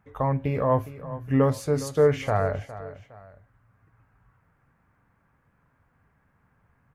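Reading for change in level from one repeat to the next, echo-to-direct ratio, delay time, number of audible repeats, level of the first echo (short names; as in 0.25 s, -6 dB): -8.5 dB, -14.5 dB, 0.411 s, 2, -15.0 dB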